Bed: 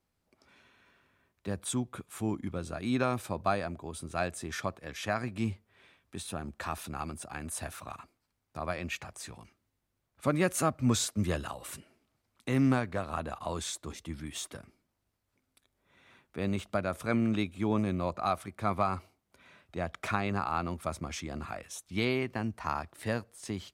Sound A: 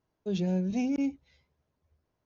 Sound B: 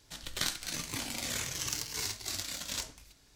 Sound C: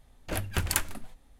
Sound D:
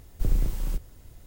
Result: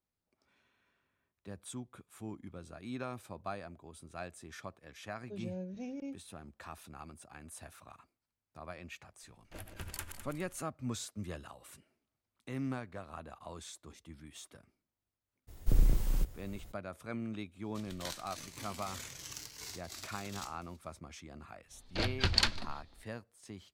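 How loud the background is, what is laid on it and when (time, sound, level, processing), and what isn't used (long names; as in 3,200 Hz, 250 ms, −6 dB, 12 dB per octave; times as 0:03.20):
bed −11.5 dB
0:05.04: mix in A −14 dB + parametric band 530 Hz +8.5 dB 0.3 octaves
0:09.23: mix in C −16 dB + feedback delay that plays each chunk backwards 103 ms, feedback 64%, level −7 dB
0:15.47: mix in D −2 dB, fades 0.02 s + pitch vibrato 2.6 Hz 38 cents
0:17.64: mix in B −10.5 dB
0:21.67: mix in C −2.5 dB, fades 0.05 s + low-pass with resonance 4,400 Hz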